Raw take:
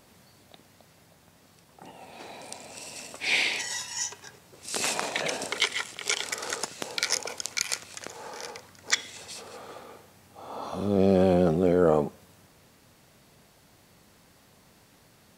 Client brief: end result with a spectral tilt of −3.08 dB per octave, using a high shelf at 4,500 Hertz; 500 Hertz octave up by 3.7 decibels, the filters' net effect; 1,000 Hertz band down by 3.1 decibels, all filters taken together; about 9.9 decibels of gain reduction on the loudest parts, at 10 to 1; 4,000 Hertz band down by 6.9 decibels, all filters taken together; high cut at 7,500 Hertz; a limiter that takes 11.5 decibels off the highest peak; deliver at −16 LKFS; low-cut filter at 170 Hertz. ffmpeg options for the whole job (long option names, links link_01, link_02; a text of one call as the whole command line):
ffmpeg -i in.wav -af "highpass=170,lowpass=7500,equalizer=frequency=500:width_type=o:gain=6,equalizer=frequency=1000:width_type=o:gain=-7,equalizer=frequency=4000:width_type=o:gain=-4.5,highshelf=frequency=4500:gain=-7,acompressor=threshold=-24dB:ratio=10,volume=21.5dB,alimiter=limit=-2.5dB:level=0:latency=1" out.wav